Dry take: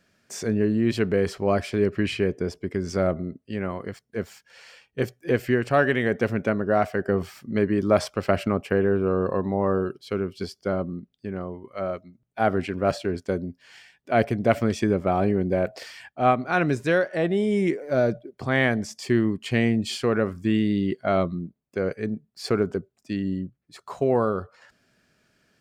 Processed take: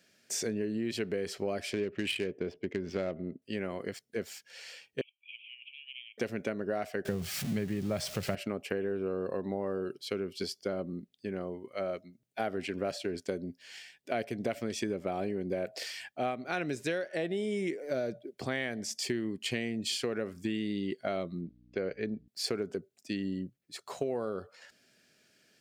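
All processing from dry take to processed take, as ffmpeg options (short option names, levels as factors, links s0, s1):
-filter_complex "[0:a]asettb=1/sr,asplit=3[s0][s1][s2];[s0]atrim=end=1.734[s3];[s1]atrim=start=1.73:end=3.42,asetpts=PTS-STARTPTS,afade=t=in:d=0.004:c=qsin,afade=t=out:st=1.686:d=0.004:c=qsin,equalizer=f=2900:t=o:w=0.73:g=7.5,adynamicsmooth=sensitivity=2.5:basefreq=1600[s4];[s2]atrim=start=3.416[s5];[s3][s4]acrossfade=d=0.004:c1=hsin:c2=qsin[s6];[s6][s5]acrossfade=d=0.004:c1=qsin:c2=hsin,asettb=1/sr,asplit=3[s7][s8][s9];[s7]atrim=end=5.014[s10];[s8]atrim=start=5.01:end=6.18,asetpts=PTS-STARTPTS,afade=t=in:d=0.004:c=qsin,afade=t=out:st=1.166:d=0.004:c=qsin,asuperpass=centerf=2800:order=12:qfactor=2.7,acompressor=threshold=0.00224:ratio=1.5:attack=3.2:release=140:knee=1:detection=peak[s11];[s9]atrim=start=6.176[s12];[s10][s11]acrossfade=d=0.004:c1=hsin:c2=qsin[s13];[s13][s12]acrossfade=d=0.004:c1=qsin:c2=hsin,asettb=1/sr,asplit=3[s14][s15][s16];[s14]atrim=end=7.054[s17];[s15]atrim=start=7.05:end=8.35,asetpts=PTS-STARTPTS,afade=t=in:d=0.004:c=qsin,afade=t=out:st=1.296:d=0.004:c=qsin,aeval=exprs='val(0)+0.5*0.0224*sgn(val(0))':c=same,lowshelf=f=210:t=q:w=1.5:g=10[s18];[s16]atrim=start=8.346[s19];[s17][s18]acrossfade=d=0.004:c1=hsin:c2=qsin[s20];[s20][s19]acrossfade=d=0.004:c1=qsin:c2=hsin,asettb=1/sr,asplit=3[s21][s22][s23];[s21]atrim=end=21.414[s24];[s22]atrim=start=21.41:end=22.28,asetpts=PTS-STARTPTS,afade=t=in:d=0.004:c=qsin,afade=t=out:st=0.866:d=0.004:c=qsin,lowpass=f=4700:w=0.5412,lowpass=f=4700:w=1.3066,aeval=exprs='val(0)+0.00316*(sin(2*PI*60*n/s)+sin(2*PI*2*60*n/s)/2+sin(2*PI*3*60*n/s)/3+sin(2*PI*4*60*n/s)/4+sin(2*PI*5*60*n/s)/5)':c=same[s25];[s23]atrim=start=22.276[s26];[s24][s25]acrossfade=d=0.004:c1=hsin:c2=qsin[s27];[s27][s26]acrossfade=d=0.004:c1=qsin:c2=hsin,highpass=f=510:p=1,equalizer=f=1100:w=1.1:g=-11.5,acompressor=threshold=0.02:ratio=6,volume=1.58"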